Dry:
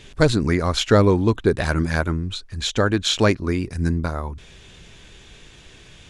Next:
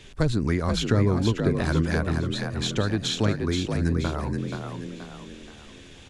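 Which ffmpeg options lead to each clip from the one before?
ffmpeg -i in.wav -filter_complex "[0:a]acrossover=split=240[link_01][link_02];[link_02]acompressor=threshold=-22dB:ratio=10[link_03];[link_01][link_03]amix=inputs=2:normalize=0,asplit=2[link_04][link_05];[link_05]asplit=5[link_06][link_07][link_08][link_09][link_10];[link_06]adelay=478,afreqshift=46,volume=-5.5dB[link_11];[link_07]adelay=956,afreqshift=92,volume=-13.2dB[link_12];[link_08]adelay=1434,afreqshift=138,volume=-21dB[link_13];[link_09]adelay=1912,afreqshift=184,volume=-28.7dB[link_14];[link_10]adelay=2390,afreqshift=230,volume=-36.5dB[link_15];[link_11][link_12][link_13][link_14][link_15]amix=inputs=5:normalize=0[link_16];[link_04][link_16]amix=inputs=2:normalize=0,volume=-3dB" out.wav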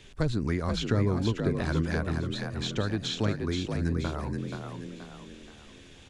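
ffmpeg -i in.wav -filter_complex "[0:a]acrossover=split=6900[link_01][link_02];[link_02]acompressor=threshold=-51dB:ratio=4:attack=1:release=60[link_03];[link_01][link_03]amix=inputs=2:normalize=0,volume=-4.5dB" out.wav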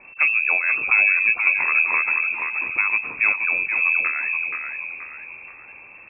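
ffmpeg -i in.wav -af "lowpass=frequency=2300:width_type=q:width=0.5098,lowpass=frequency=2300:width_type=q:width=0.6013,lowpass=frequency=2300:width_type=q:width=0.9,lowpass=frequency=2300:width_type=q:width=2.563,afreqshift=-2700,volume=8dB" out.wav

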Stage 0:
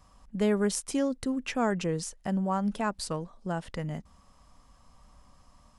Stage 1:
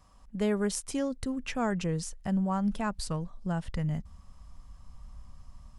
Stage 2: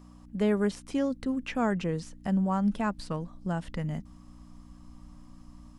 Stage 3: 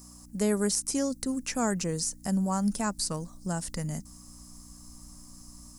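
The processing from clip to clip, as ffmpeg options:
ffmpeg -i in.wav -af "asubboost=boost=5:cutoff=160,volume=-2dB" out.wav
ffmpeg -i in.wav -filter_complex "[0:a]aeval=exprs='val(0)+0.00447*(sin(2*PI*60*n/s)+sin(2*PI*2*60*n/s)/2+sin(2*PI*3*60*n/s)/3+sin(2*PI*4*60*n/s)/4+sin(2*PI*5*60*n/s)/5)':channel_layout=same,acrossover=split=3800[link_01][link_02];[link_02]acompressor=threshold=-52dB:ratio=4:attack=1:release=60[link_03];[link_01][link_03]amix=inputs=2:normalize=0,lowshelf=frequency=160:width_type=q:width=1.5:gain=-6.5,volume=1.5dB" out.wav
ffmpeg -i in.wav -af "aexciter=amount=5.9:drive=9.2:freq=4800,volume=-1dB" out.wav

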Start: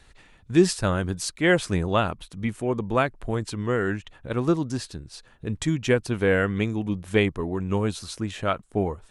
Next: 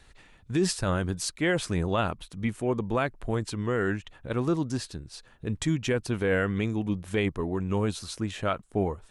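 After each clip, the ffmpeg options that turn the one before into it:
ffmpeg -i in.wav -af "alimiter=limit=-14.5dB:level=0:latency=1:release=25,volume=-1.5dB" out.wav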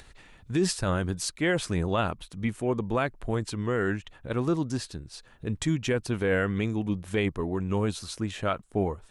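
ffmpeg -i in.wav -af "acompressor=mode=upward:threshold=-46dB:ratio=2.5" out.wav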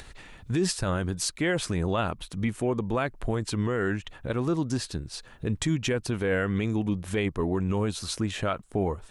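ffmpeg -i in.wav -af "alimiter=limit=-22.5dB:level=0:latency=1:release=200,volume=5.5dB" out.wav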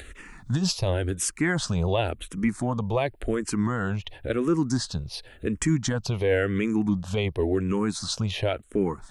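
ffmpeg -i in.wav -filter_complex "[0:a]asplit=2[link_01][link_02];[link_02]afreqshift=-0.93[link_03];[link_01][link_03]amix=inputs=2:normalize=1,volume=5dB" out.wav

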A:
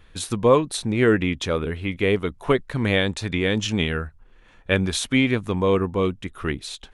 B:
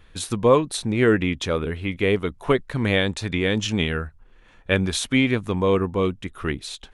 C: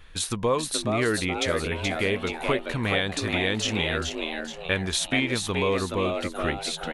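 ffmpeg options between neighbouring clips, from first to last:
ffmpeg -i in.wav -af anull out.wav
ffmpeg -i in.wav -filter_complex "[0:a]equalizer=frequency=210:width=0.3:gain=-6.5,acompressor=threshold=-30dB:ratio=2,asplit=2[link_01][link_02];[link_02]asplit=5[link_03][link_04][link_05][link_06][link_07];[link_03]adelay=426,afreqshift=150,volume=-5dB[link_08];[link_04]adelay=852,afreqshift=300,volume=-12.3dB[link_09];[link_05]adelay=1278,afreqshift=450,volume=-19.7dB[link_10];[link_06]adelay=1704,afreqshift=600,volume=-27dB[link_11];[link_07]adelay=2130,afreqshift=750,volume=-34.3dB[link_12];[link_08][link_09][link_10][link_11][link_12]amix=inputs=5:normalize=0[link_13];[link_01][link_13]amix=inputs=2:normalize=0,volume=4dB" out.wav

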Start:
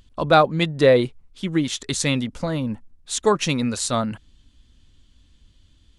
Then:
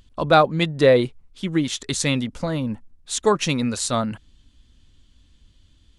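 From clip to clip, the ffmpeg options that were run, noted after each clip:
ffmpeg -i in.wav -af anull out.wav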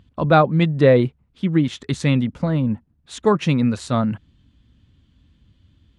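ffmpeg -i in.wav -af "highpass=96,bass=frequency=250:gain=9,treble=frequency=4000:gain=-14" out.wav

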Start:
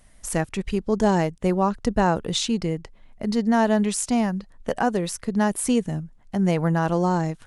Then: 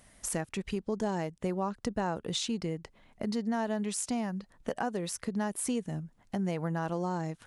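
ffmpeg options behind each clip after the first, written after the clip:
ffmpeg -i in.wav -af "highpass=frequency=100:poles=1,acompressor=threshold=-34dB:ratio=2.5" out.wav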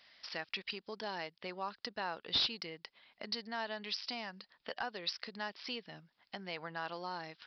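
ffmpeg -i in.wav -af "aderivative,aresample=11025,asoftclip=type=hard:threshold=-39.5dB,aresample=44100,volume=12.5dB" out.wav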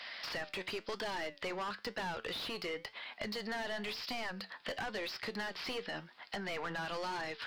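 ffmpeg -i in.wav -filter_complex "[0:a]asplit=2[link_01][link_02];[link_02]highpass=frequency=720:poles=1,volume=31dB,asoftclip=type=tanh:threshold=-20.5dB[link_03];[link_01][link_03]amix=inputs=2:normalize=0,lowpass=frequency=2300:poles=1,volume=-6dB,flanger=delay=7.7:depth=4.1:regen=75:speed=0.97:shape=triangular,acrossover=split=490|1100[link_04][link_05][link_06];[link_04]acompressor=threshold=-42dB:ratio=4[link_07];[link_05]acompressor=threshold=-48dB:ratio=4[link_08];[link_06]acompressor=threshold=-42dB:ratio=4[link_09];[link_07][link_08][link_09]amix=inputs=3:normalize=0,volume=1dB" out.wav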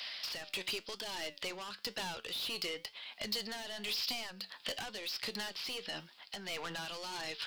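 ffmpeg -i in.wav -af "tremolo=f=1.5:d=0.43,aexciter=amount=3.6:drive=4:freq=2600,volume=-2.5dB" out.wav

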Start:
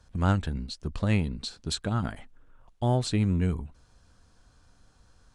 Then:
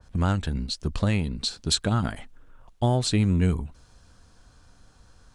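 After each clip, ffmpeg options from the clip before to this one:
ffmpeg -i in.wav -af "alimiter=limit=-17.5dB:level=0:latency=1:release=326,adynamicequalizer=threshold=0.00447:dfrequency=2700:dqfactor=0.7:tfrequency=2700:tqfactor=0.7:attack=5:release=100:ratio=0.375:range=2:mode=boostabove:tftype=highshelf,volume=5dB" out.wav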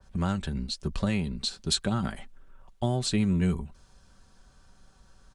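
ffmpeg -i in.wav -filter_complex "[0:a]aecho=1:1:5.2:0.44,acrossover=split=320|3000[link_01][link_02][link_03];[link_02]acompressor=threshold=-25dB:ratio=6[link_04];[link_01][link_04][link_03]amix=inputs=3:normalize=0,volume=-3.5dB" out.wav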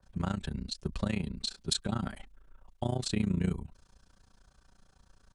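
ffmpeg -i in.wav -af "tremolo=f=29:d=0.919,volume=-1dB" out.wav

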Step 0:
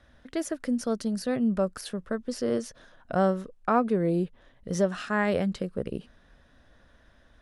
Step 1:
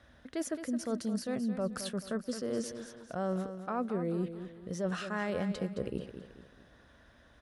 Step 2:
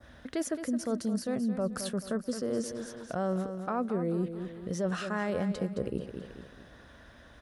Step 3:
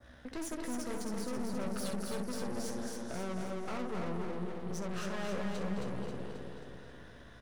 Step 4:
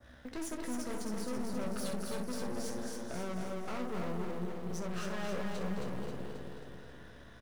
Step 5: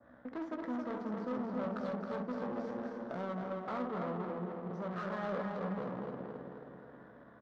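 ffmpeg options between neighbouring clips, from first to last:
ffmpeg -i in.wav -af "highpass=53,areverse,acompressor=threshold=-31dB:ratio=6,areverse,aecho=1:1:217|434|651|868:0.316|0.123|0.0481|0.0188" out.wav
ffmpeg -i in.wav -filter_complex "[0:a]adynamicequalizer=threshold=0.00158:dfrequency=2900:dqfactor=0.76:tfrequency=2900:tqfactor=0.76:attack=5:release=100:ratio=0.375:range=2.5:mode=cutabove:tftype=bell,asplit=2[link_01][link_02];[link_02]acompressor=threshold=-41dB:ratio=6,volume=1.5dB[link_03];[link_01][link_03]amix=inputs=2:normalize=0" out.wav
ffmpeg -i in.wav -filter_complex "[0:a]asplit=2[link_01][link_02];[link_02]aecho=0:1:16|65:0.447|0.355[link_03];[link_01][link_03]amix=inputs=2:normalize=0,aeval=exprs='(tanh(70.8*val(0)+0.75)-tanh(0.75))/70.8':channel_layout=same,asplit=2[link_04][link_05];[link_05]aecho=0:1:268|536|804|1072|1340|1608|1876:0.631|0.347|0.191|0.105|0.0577|0.0318|0.0175[link_06];[link_04][link_06]amix=inputs=2:normalize=0" out.wav
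ffmpeg -i in.wav -filter_complex "[0:a]asplit=2[link_01][link_02];[link_02]acrusher=bits=4:mode=log:mix=0:aa=0.000001,volume=-6.5dB[link_03];[link_01][link_03]amix=inputs=2:normalize=0,asplit=2[link_04][link_05];[link_05]adelay=28,volume=-12.5dB[link_06];[link_04][link_06]amix=inputs=2:normalize=0,volume=-4dB" out.wav
ffmpeg -i in.wav -af "highpass=210,equalizer=frequency=380:width_type=q:width=4:gain=-6,equalizer=frequency=1200:width_type=q:width=4:gain=4,equalizer=frequency=2700:width_type=q:width=4:gain=-8,lowpass=frequency=6900:width=0.5412,lowpass=frequency=6900:width=1.3066,adynamicsmooth=sensitivity=6.5:basefreq=1200,aemphasis=mode=reproduction:type=50fm,volume=3dB" out.wav

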